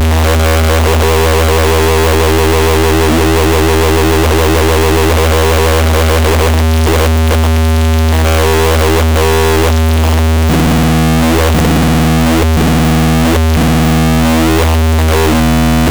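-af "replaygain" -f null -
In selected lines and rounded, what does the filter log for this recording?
track_gain = -5.1 dB
track_peak = 0.282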